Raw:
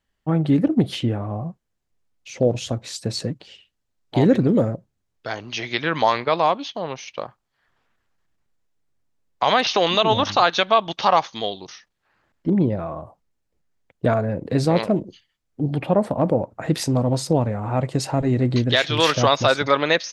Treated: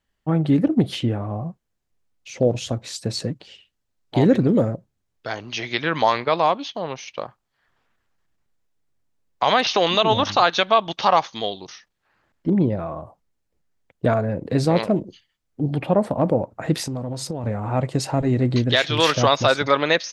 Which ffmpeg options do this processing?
-filter_complex "[0:a]asplit=3[a][b][c];[a]afade=t=out:st=16.8:d=0.02[d];[b]acompressor=threshold=-24dB:ratio=6:attack=3.2:release=140:knee=1:detection=peak,afade=t=in:st=16.8:d=0.02,afade=t=out:st=17.43:d=0.02[e];[c]afade=t=in:st=17.43:d=0.02[f];[d][e][f]amix=inputs=3:normalize=0"

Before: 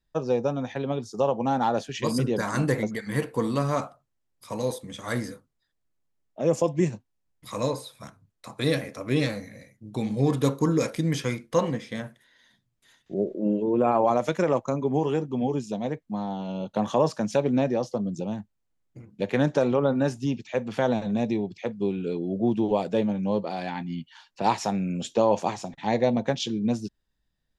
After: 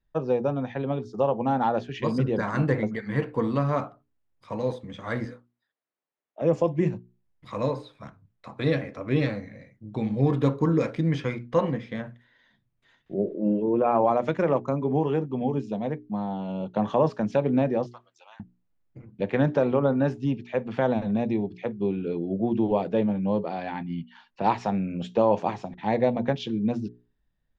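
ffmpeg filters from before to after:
-filter_complex "[0:a]asettb=1/sr,asplit=3[a][b][c];[a]atrim=end=5.254[d];[b]atrim=start=5.25:end=6.42,asetpts=PTS-STARTPTS,afade=t=in:d=0.004:c=qsin,afade=t=out:st=1.166:d=0.004:c=qsin,highpass=430[e];[c]atrim=start=6.416[f];[d][e]acrossfade=d=0.004:c1=hsin:c2=qsin[g];[g][f]acrossfade=d=0.004:c1=qsin:c2=hsin,asettb=1/sr,asplit=3[h][i][j];[h]atrim=end=17.864[k];[i]atrim=start=17.86:end=18.4,asetpts=PTS-STARTPTS,afade=t=in:d=0.004:c=qsin,afade=t=out:st=0.536:d=0.004:c=qsin,highpass=f=1.1k:w=0.5412,highpass=f=1.1k:w=1.3066[l];[j]atrim=start=18.396[m];[k][l]acrossfade=d=0.004:c1=hsin:c2=qsin[n];[n][m]acrossfade=d=0.004:c1=qsin:c2=hsin,lowpass=2.7k,lowshelf=f=140:g=4,bandreject=f=60:t=h:w=6,bandreject=f=120:t=h:w=6,bandreject=f=180:t=h:w=6,bandreject=f=240:t=h:w=6,bandreject=f=300:t=h:w=6,bandreject=f=360:t=h:w=6,bandreject=f=420:t=h:w=6"

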